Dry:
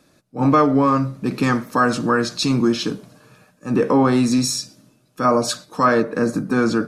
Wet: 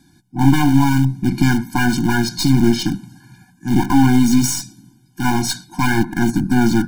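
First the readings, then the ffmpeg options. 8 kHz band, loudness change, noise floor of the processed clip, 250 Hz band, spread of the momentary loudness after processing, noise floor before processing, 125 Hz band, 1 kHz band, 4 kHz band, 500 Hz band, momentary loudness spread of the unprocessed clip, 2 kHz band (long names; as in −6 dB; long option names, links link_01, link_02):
+4.0 dB, +2.0 dB, −54 dBFS, +4.0 dB, 10 LU, −59 dBFS, +7.5 dB, −2.5 dB, +1.5 dB, −8.0 dB, 9 LU, +2.5 dB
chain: -filter_complex "[0:a]asplit=2[link_01][link_02];[link_02]aeval=exprs='(mod(7.94*val(0)+1,2)-1)/7.94':channel_layout=same,volume=-11dB[link_03];[link_01][link_03]amix=inputs=2:normalize=0,bass=frequency=250:gain=5,treble=frequency=4000:gain=3,aeval=exprs='0.668*(cos(1*acos(clip(val(0)/0.668,-1,1)))-cos(1*PI/2))+0.15*(cos(4*acos(clip(val(0)/0.668,-1,1)))-cos(4*PI/2))':channel_layout=same,afftfilt=real='re*eq(mod(floor(b*sr/1024/350),2),0)':imag='im*eq(mod(floor(b*sr/1024/350),2),0)':win_size=1024:overlap=0.75,volume=1.5dB"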